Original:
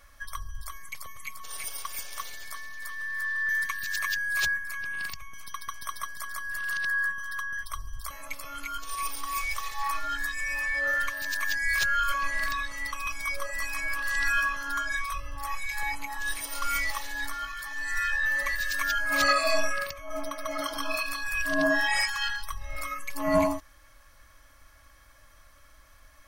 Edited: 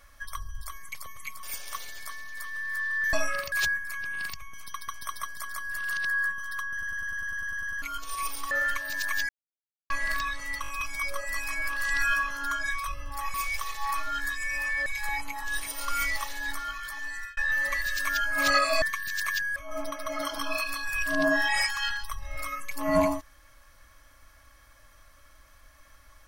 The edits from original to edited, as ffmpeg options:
-filter_complex "[0:a]asplit=26[a][b][c][d][e][f][g][h][i][j][k][l][m][n][o][p][q][r][s][t][u][v][w][x][y][z];[a]atrim=end=1.432[aa];[b]atrim=start=1.878:end=3.582[ab];[c]atrim=start=19.558:end=19.952[ac];[d]atrim=start=4.318:end=7.622[ad];[e]atrim=start=7.518:end=7.622[ae];[f]atrim=start=7.518:end=7.622[af];[g]atrim=start=7.518:end=7.622[ag];[h]atrim=start=7.518:end=7.622[ah];[i]atrim=start=7.518:end=7.622[ai];[j]atrim=start=7.518:end=7.622[aj];[k]atrim=start=7.518:end=7.622[ak];[l]atrim=start=7.518:end=7.622[al];[m]atrim=start=7.518:end=7.622[am];[n]atrim=start=7.518:end=7.622[an];[o]atrim=start=8.618:end=9.312[ao];[p]atrim=start=10.828:end=11.61,asetpts=PTS-STARTPTS,afade=t=out:st=0.778:d=0.004:c=hsin[ap];[q]atrim=start=11.61:end=12.22,asetpts=PTS-STARTPTS,volume=0[aq];[r]atrim=start=12.22:end=12.962,asetpts=PTS-STARTPTS,afade=t=in:d=0.004:c=hsin[ar];[s]atrim=start=12.938:end=12.962[as];[t]atrim=start=12.938:end=12.962[at];[u]atrim=start=12.938:end=15.602[au];[v]atrim=start=9.308:end=10.832[av];[w]atrim=start=15.598:end=18.11,asetpts=PTS-STARTPTS,afade=t=out:st=2.122:d=0.39[aw];[x]atrim=start=18.11:end=19.562,asetpts=PTS-STARTPTS,afade=t=in:d=0.004:c=hsin[ax];[y]atrim=start=3.578:end=4.322[ay];[z]atrim=start=19.948[az];[aa][ab]acrossfade=d=0.004:c1=hsin:c2=hsin[ba];[ba][ac]acrossfade=d=0.004:c1=hsin:c2=hsin[bb];[bb][ad]acrossfade=d=0.004:c1=hsin:c2=hsin[bc];[bc][ae]acrossfade=d=0.004:c1=hsin:c2=hsin[bd];[bd][af]acrossfade=d=0.004:c1=hsin:c2=hsin[be];[be][ag]acrossfade=d=0.004:c1=hsin:c2=hsin[bf];[bf][ah]acrossfade=d=0.004:c1=hsin:c2=hsin[bg];[bg][ai]acrossfade=d=0.004:c1=hsin:c2=hsin[bh];[bh][aj]acrossfade=d=0.004:c1=hsin:c2=hsin[bi];[bi][ak]acrossfade=d=0.004:c1=hsin:c2=hsin[bj];[bj][al]acrossfade=d=0.004:c1=hsin:c2=hsin[bk];[bk][am]acrossfade=d=0.004:c1=hsin:c2=hsin[bl];[bl][an]acrossfade=d=0.004:c1=hsin:c2=hsin[bm];[bm][ao]acrossfade=d=0.004:c1=hsin:c2=hsin[bn];[ap][aq][ar]concat=n=3:v=0:a=1[bo];[bn][bo]acrossfade=d=0.004:c1=hsin:c2=hsin[bp];[bp][as]acrossfade=d=0.004:c1=hsin:c2=hsin[bq];[bq][at]acrossfade=d=0.004:c1=hsin:c2=hsin[br];[br][au]acrossfade=d=0.004:c1=hsin:c2=hsin[bs];[bs][av]acrossfade=d=0.004:c1=hsin:c2=hsin[bt];[aw][ax]concat=n=2:v=0:a=1[bu];[bt][bu]acrossfade=d=0.004:c1=hsin:c2=hsin[bv];[bv][ay]acrossfade=d=0.004:c1=hsin:c2=hsin[bw];[bw][az]acrossfade=d=0.004:c1=hsin:c2=hsin"

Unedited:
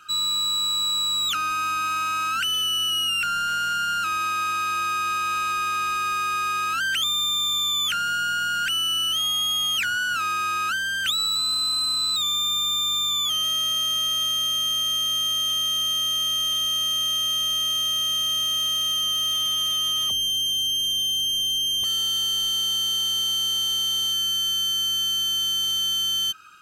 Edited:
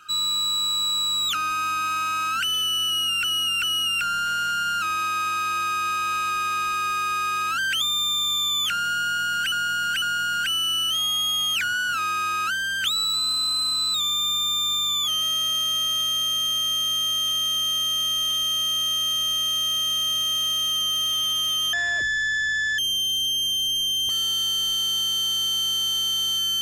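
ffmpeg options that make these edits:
-filter_complex "[0:a]asplit=7[a][b][c][d][e][f][g];[a]atrim=end=3.242[h];[b]atrim=start=2.848:end=3.242[i];[c]atrim=start=2.848:end=8.742[j];[d]atrim=start=8.238:end=8.742[k];[e]atrim=start=8.238:end=19.954[l];[f]atrim=start=19.95:end=20.53,asetpts=PTS-STARTPTS,asetrate=24255,aresample=44100,atrim=end_sample=46505,asetpts=PTS-STARTPTS[m];[g]atrim=start=20.526[n];[h][i]acrossfade=d=0.004:c1=hsin:c2=hsin[o];[o][j]acrossfade=d=0.004:c1=hsin:c2=hsin[p];[p][k]acrossfade=d=0.004:c1=hsin:c2=hsin[q];[q][l]acrossfade=d=0.004:c1=hsin:c2=hsin[r];[r][m]acrossfade=d=0.004:c1=hsin:c2=hsin[s];[s][n]acrossfade=d=0.004:c1=hsin:c2=hsin"

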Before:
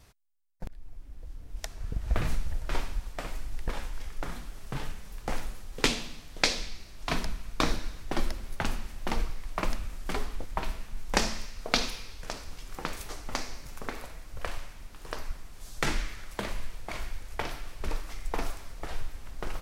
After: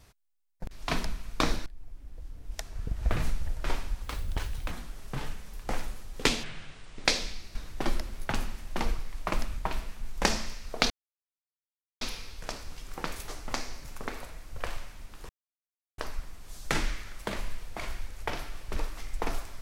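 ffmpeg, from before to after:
-filter_complex "[0:a]asplit=11[a][b][c][d][e][f][g][h][i][j][k];[a]atrim=end=0.712[l];[b]atrim=start=6.908:end=7.862[m];[c]atrim=start=0.708:end=3.094[n];[d]atrim=start=3.09:end=4.3,asetpts=PTS-STARTPTS,asetrate=79380,aresample=44100[o];[e]atrim=start=4.296:end=6.024[p];[f]atrim=start=6.02:end=6.41,asetpts=PTS-STARTPTS,asetrate=27783,aresample=44100[q];[g]atrim=start=6.406:end=6.912[r];[h]atrim=start=7.858:end=9.892[s];[i]atrim=start=10.498:end=11.82,asetpts=PTS-STARTPTS,afade=t=out:st=1.318:d=0.004:c=hsin,apad=pad_dur=1.11[t];[j]atrim=start=11.82:end=15.1,asetpts=PTS-STARTPTS,afade=t=in:d=0.004:c=hsin,afade=t=out:st=3.276:d=0.004:c=hsin,apad=pad_dur=0.69[u];[k]atrim=start=15.1,asetpts=PTS-STARTPTS,afade=t=in:d=0.004:c=hsin[v];[l][m]acrossfade=d=0.004:c1=hsin:c2=hsin[w];[w][n]acrossfade=d=0.004:c1=hsin:c2=hsin[x];[x][o]acrossfade=d=0.004:c1=hsin:c2=hsin[y];[y][p]acrossfade=d=0.004:c1=hsin:c2=hsin[z];[z][q]acrossfade=d=0.004:c1=hsin:c2=hsin[aa];[aa][r]acrossfade=d=0.004:c1=hsin:c2=hsin[ab];[ab][s]acrossfade=d=0.004:c1=hsin:c2=hsin[ac];[t][u][v]concat=n=3:v=0:a=1[ad];[ac][ad]acrossfade=d=0.004:c1=hsin:c2=hsin"

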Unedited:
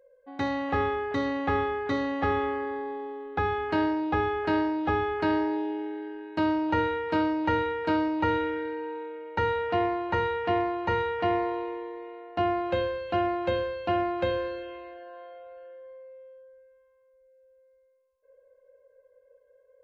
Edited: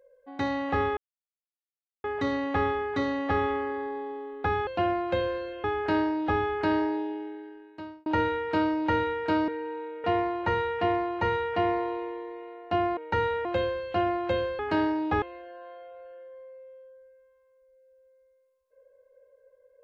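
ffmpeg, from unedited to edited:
-filter_complex "[0:a]asplit=11[a][b][c][d][e][f][g][h][i][j][k];[a]atrim=end=0.97,asetpts=PTS-STARTPTS,afade=t=out:st=0.966:d=0.004:c=hsin,apad=pad_dur=1.07[l];[b]atrim=start=0.97:end=3.602,asetpts=PTS-STARTPTS,afade=t=in:d=0.004:c=hsin[m];[c]atrim=start=13.768:end=14.742[n];[d]atrim=start=4.228:end=6.65,asetpts=PTS-STARTPTS,afade=t=out:st=1.202:d=1.22[o];[e]atrim=start=6.65:end=8.072,asetpts=PTS-STARTPTS,afade=t=in:d=0.004:c=hsin[p];[f]atrim=start=8.658:end=9.222[q];[g]atrim=start=9.698:end=12.632[r];[h]atrim=start=9.218:end=9.702[s];[i]atrim=start=12.628:end=13.772[t];[j]atrim=start=3.598:end=4.232[u];[k]atrim=start=14.738[v];[l][m]concat=n=2:v=0:a=1[w];[w][n]acrossfade=d=0.004:c1=hsin:c2=hsin[x];[o][p]concat=n=2:v=0:a=1[y];[x][y]acrossfade=d=0.004:c1=hsin:c2=hsin[z];[z][q]acrossfade=d=0.004:c1=hsin:c2=hsin[aa];[aa][r]acrossfade=d=0.004:c1=hsin:c2=hsin[ab];[ab][s]acrossfade=d=0.004:c1=hsin:c2=hsin[ac];[ac][t]acrossfade=d=0.004:c1=hsin:c2=hsin[ad];[ad][u]acrossfade=d=0.004:c1=hsin:c2=hsin[ae];[ae][v]acrossfade=d=0.004:c1=hsin:c2=hsin"

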